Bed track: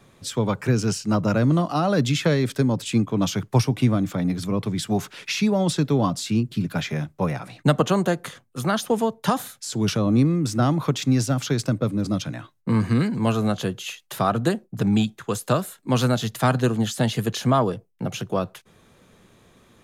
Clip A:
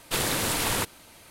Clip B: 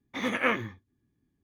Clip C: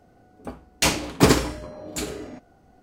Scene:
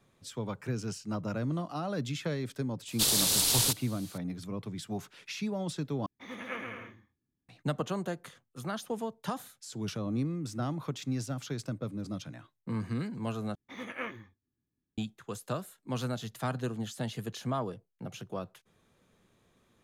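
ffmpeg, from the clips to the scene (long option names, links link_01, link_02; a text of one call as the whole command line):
ffmpeg -i bed.wav -i cue0.wav -i cue1.wav -filter_complex "[2:a]asplit=2[link_01][link_02];[0:a]volume=-13.5dB[link_03];[1:a]highshelf=frequency=2900:width_type=q:width=1.5:gain=11.5[link_04];[link_01]aecho=1:1:130|214.5|269.4|305.1|328.3:0.631|0.398|0.251|0.158|0.1[link_05];[link_03]asplit=3[link_06][link_07][link_08];[link_06]atrim=end=6.064[link_09];[link_05]atrim=end=1.43,asetpts=PTS-STARTPTS,volume=-13.5dB[link_10];[link_07]atrim=start=7.486:end=13.554[link_11];[link_02]atrim=end=1.43,asetpts=PTS-STARTPTS,volume=-12dB[link_12];[link_08]atrim=start=14.976[link_13];[link_04]atrim=end=1.3,asetpts=PTS-STARTPTS,volume=-9dB,afade=type=in:duration=0.004:curve=hsin,afade=type=out:start_time=1.296:duration=0.004:curve=hsin,adelay=2880[link_14];[link_09][link_10]acrossfade=duration=0.004:curve1=hsin:curve2=hsin[link_15];[link_15][link_11]acrossfade=duration=0.004:curve1=hsin:curve2=hsin[link_16];[link_16][link_12]acrossfade=duration=0.004:curve1=hsin:curve2=hsin[link_17];[link_17][link_13]acrossfade=duration=0.004:curve1=hsin:curve2=hsin[link_18];[link_18][link_14]amix=inputs=2:normalize=0" out.wav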